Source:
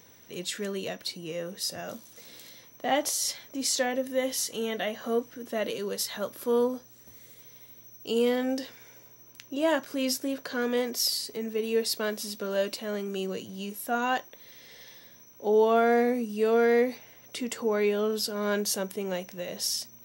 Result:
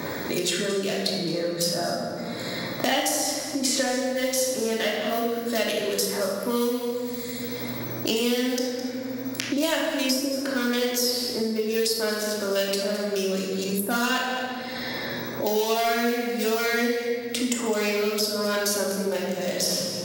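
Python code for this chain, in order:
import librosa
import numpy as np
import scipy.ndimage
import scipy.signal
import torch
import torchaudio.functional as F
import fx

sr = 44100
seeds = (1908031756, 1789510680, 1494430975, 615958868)

p1 = fx.wiener(x, sr, points=15)
p2 = fx.high_shelf(p1, sr, hz=2500.0, db=11.0)
p3 = p2 + fx.echo_single(p2, sr, ms=211, db=-15.5, dry=0)
p4 = fx.room_shoebox(p3, sr, seeds[0], volume_m3=800.0, walls='mixed', distance_m=2.6)
p5 = fx.band_squash(p4, sr, depth_pct=100)
y = F.gain(torch.from_numpy(p5), -3.5).numpy()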